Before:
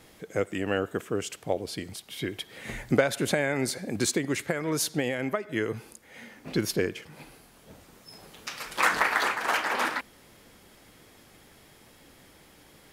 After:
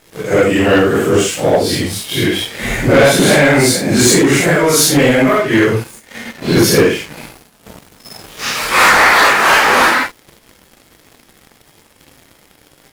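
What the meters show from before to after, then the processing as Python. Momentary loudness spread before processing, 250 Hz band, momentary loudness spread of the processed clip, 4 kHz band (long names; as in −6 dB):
15 LU, +18.0 dB, 12 LU, +18.5 dB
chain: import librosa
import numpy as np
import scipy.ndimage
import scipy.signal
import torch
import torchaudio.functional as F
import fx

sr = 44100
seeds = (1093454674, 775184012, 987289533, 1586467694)

y = fx.phase_scramble(x, sr, seeds[0], window_ms=200)
y = fx.leveller(y, sr, passes=3)
y = y * 10.0 ** (8.5 / 20.0)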